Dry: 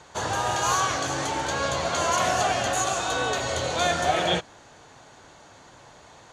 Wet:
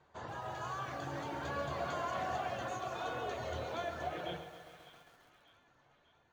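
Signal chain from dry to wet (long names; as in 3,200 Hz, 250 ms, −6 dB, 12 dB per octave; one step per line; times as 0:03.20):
source passing by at 0:02.44, 8 m/s, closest 1.5 metres
reverb reduction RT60 0.67 s
hum removal 54.29 Hz, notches 18
downward compressor 16 to 1, threshold −41 dBFS, peak gain reduction 20 dB
head-to-tape spacing loss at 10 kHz 26 dB
echo with a time of its own for lows and highs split 1,100 Hz, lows 102 ms, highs 596 ms, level −14.5 dB
on a send at −9.5 dB: convolution reverb RT60 0.35 s, pre-delay 3 ms
on the sum: feedback echo at a low word length 134 ms, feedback 80%, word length 11 bits, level −13 dB
level +8 dB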